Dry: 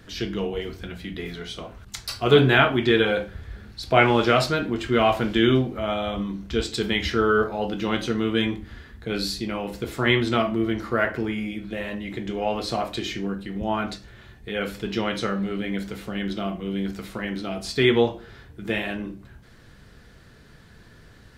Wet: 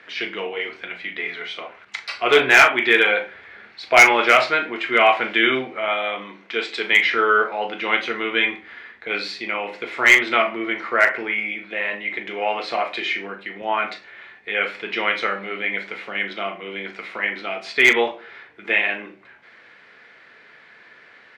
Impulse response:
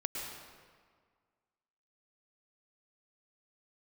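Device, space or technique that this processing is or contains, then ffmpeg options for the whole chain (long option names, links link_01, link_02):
megaphone: -filter_complex "[0:a]highpass=560,lowpass=3000,equalizer=frequency=2200:width_type=o:width=0.54:gain=11,asoftclip=type=hard:threshold=-9.5dB,asplit=2[link_01][link_02];[link_02]adelay=39,volume=-12dB[link_03];[link_01][link_03]amix=inputs=2:normalize=0,asettb=1/sr,asplit=3[link_04][link_05][link_06];[link_04]atrim=end=5.884[link_07];[link_05]atrim=start=5.88:end=6.93,asetpts=PTS-STARTPTS,afade=type=in:duration=0.004:curve=qsin,afade=type=out:start_time=1.046:duration=0.004:curve=qsin,highpass=210[link_08];[link_06]atrim=start=6.926[link_09];[link_07][link_08]acrossfade=duration=0.004:curve1=hsin:curve2=qsin[link_10];[link_10][link_09]acrossfade=duration=0.004:curve1=qsin:curve2=hsin,volume=5dB"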